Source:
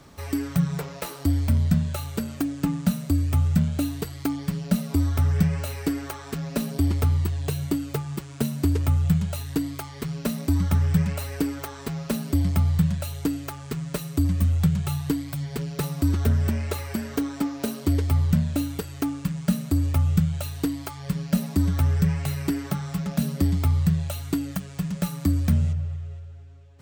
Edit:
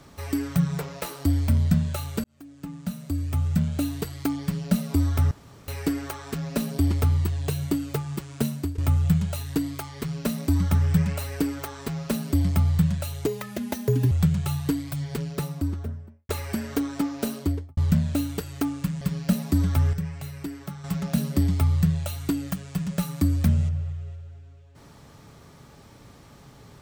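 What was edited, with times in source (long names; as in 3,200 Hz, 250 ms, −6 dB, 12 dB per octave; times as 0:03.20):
0:02.24–0:03.97: fade in
0:05.31–0:05.68: fill with room tone
0:08.48–0:08.78: fade out, to −19 dB
0:13.26–0:14.52: play speed 148%
0:15.52–0:16.70: fade out and dull
0:17.74–0:18.18: fade out and dull
0:19.42–0:21.05: remove
0:21.97–0:22.88: clip gain −8.5 dB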